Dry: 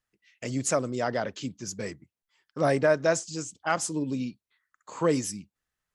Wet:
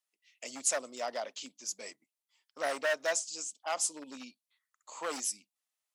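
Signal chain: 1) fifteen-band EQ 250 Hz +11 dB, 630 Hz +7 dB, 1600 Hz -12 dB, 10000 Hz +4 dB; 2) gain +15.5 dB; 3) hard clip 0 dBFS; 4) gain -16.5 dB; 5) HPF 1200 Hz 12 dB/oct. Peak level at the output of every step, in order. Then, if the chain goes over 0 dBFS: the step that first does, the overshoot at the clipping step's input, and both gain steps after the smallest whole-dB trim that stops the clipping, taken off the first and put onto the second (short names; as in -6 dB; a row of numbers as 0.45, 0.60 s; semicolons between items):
-7.0, +8.5, 0.0, -16.5, -15.5 dBFS; step 2, 8.5 dB; step 2 +6.5 dB, step 4 -7.5 dB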